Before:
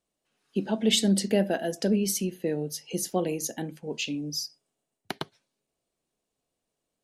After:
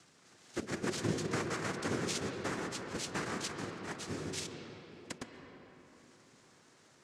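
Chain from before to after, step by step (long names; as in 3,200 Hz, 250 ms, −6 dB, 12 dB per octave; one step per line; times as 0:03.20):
samples in bit-reversed order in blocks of 16 samples
downward compressor 2 to 1, threshold −26 dBFS, peak gain reduction 5 dB
cochlear-implant simulation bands 3
upward compression, threshold −35 dBFS
parametric band 5,500 Hz +5 dB 2.2 octaves
convolution reverb RT60 4.1 s, pre-delay 107 ms, DRR 3.5 dB
level −8.5 dB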